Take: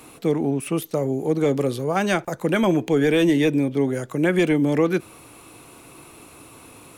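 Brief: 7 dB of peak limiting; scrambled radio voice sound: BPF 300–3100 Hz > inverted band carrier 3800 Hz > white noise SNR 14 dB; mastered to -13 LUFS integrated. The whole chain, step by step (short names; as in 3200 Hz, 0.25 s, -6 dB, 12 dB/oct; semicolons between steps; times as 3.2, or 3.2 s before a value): limiter -17.5 dBFS; BPF 300–3100 Hz; inverted band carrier 3800 Hz; white noise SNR 14 dB; gain +12 dB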